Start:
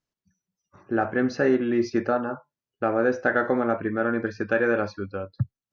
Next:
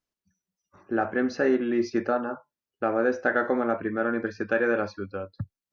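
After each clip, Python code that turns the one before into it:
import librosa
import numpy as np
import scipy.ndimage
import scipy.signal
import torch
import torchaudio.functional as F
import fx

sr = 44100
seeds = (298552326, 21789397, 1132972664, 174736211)

y = fx.peak_eq(x, sr, hz=130.0, db=-13.0, octaves=0.38)
y = y * 10.0 ** (-1.5 / 20.0)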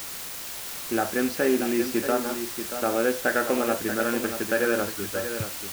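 y = fx.rattle_buzz(x, sr, strikes_db=-31.0, level_db=-29.0)
y = fx.quant_dither(y, sr, seeds[0], bits=6, dither='triangular')
y = y + 10.0 ** (-9.0 / 20.0) * np.pad(y, (int(633 * sr / 1000.0), 0))[:len(y)]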